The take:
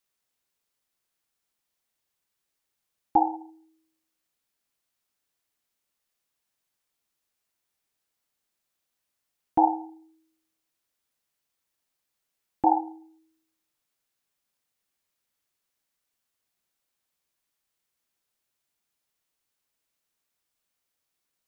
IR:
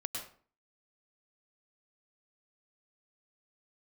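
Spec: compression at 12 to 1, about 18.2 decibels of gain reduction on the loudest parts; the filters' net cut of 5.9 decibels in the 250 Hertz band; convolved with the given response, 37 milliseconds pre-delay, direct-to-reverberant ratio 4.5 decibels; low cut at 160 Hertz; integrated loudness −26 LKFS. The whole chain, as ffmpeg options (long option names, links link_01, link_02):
-filter_complex "[0:a]highpass=160,equalizer=frequency=250:width_type=o:gain=-8.5,acompressor=threshold=-35dB:ratio=12,asplit=2[link_01][link_02];[1:a]atrim=start_sample=2205,adelay=37[link_03];[link_02][link_03]afir=irnorm=-1:irlink=0,volume=-5.5dB[link_04];[link_01][link_04]amix=inputs=2:normalize=0,volume=17.5dB"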